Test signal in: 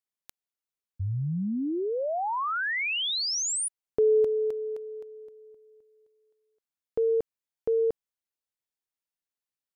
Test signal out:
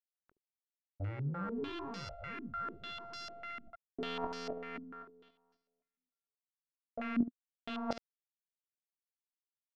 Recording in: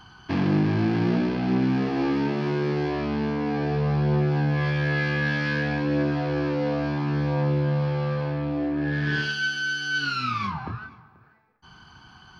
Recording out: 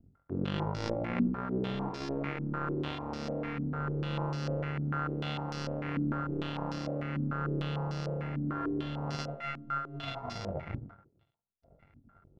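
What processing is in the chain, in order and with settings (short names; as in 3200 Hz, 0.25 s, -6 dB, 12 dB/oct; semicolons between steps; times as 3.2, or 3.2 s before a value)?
sample sorter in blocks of 64 samples; tilt -3.5 dB/oct; reverse; compressor 4:1, threshold -29 dBFS; reverse; power-law curve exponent 2; on a send: early reflections 21 ms -5 dB, 72 ms -11.5 dB; on the sum: stepped low-pass 6.7 Hz 250–5200 Hz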